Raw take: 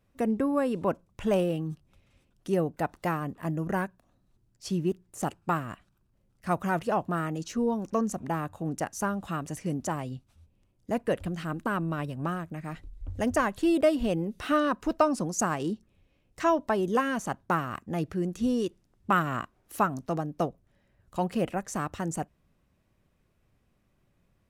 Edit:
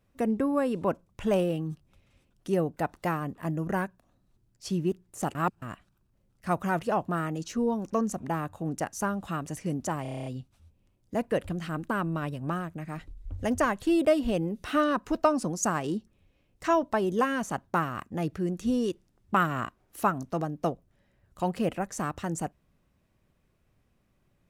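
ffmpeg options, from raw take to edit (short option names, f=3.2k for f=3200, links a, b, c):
-filter_complex "[0:a]asplit=11[a][b][c][d][e][f][g][h][i][j][k];[a]atrim=end=5.352[l];[b]atrim=start=5.348:end=5.622,asetpts=PTS-STARTPTS,areverse[m];[c]atrim=start=5.618:end=10.052[n];[d]atrim=start=10.018:end=10.052[o];[e]atrim=start=10.018:end=10.052[p];[f]atrim=start=10.018:end=10.052[q];[g]atrim=start=10.018:end=10.052[r];[h]atrim=start=10.018:end=10.052[s];[i]atrim=start=10.018:end=10.052[t];[j]atrim=start=10.018:end=10.052[u];[k]atrim=start=10.018[v];[l][m]acrossfade=d=0.004:c1=hsin:c2=hsin[w];[w][n]acrossfade=d=0.004:c1=hsin:c2=hsin[x];[x][o]acrossfade=d=0.004:c1=hsin:c2=hsin[y];[y][p]acrossfade=d=0.004:c1=hsin:c2=hsin[z];[z][q]acrossfade=d=0.004:c1=hsin:c2=hsin[aa];[aa][r]acrossfade=d=0.004:c1=hsin:c2=hsin[ab];[ab][s]acrossfade=d=0.004:c1=hsin:c2=hsin[ac];[ac][t]acrossfade=d=0.004:c1=hsin:c2=hsin[ad];[ad][u]acrossfade=d=0.004:c1=hsin:c2=hsin[ae];[ae][v]acrossfade=d=0.004:c1=hsin:c2=hsin"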